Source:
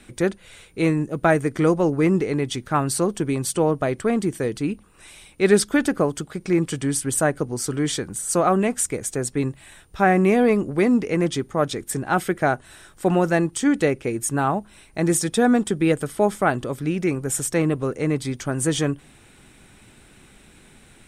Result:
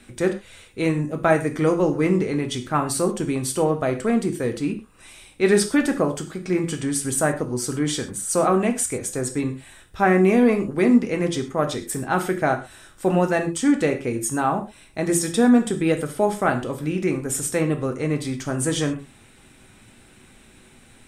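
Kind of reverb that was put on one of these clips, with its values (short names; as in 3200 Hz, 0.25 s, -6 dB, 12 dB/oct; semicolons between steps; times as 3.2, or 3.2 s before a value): non-linear reverb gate 0.15 s falling, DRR 4.5 dB; gain -1.5 dB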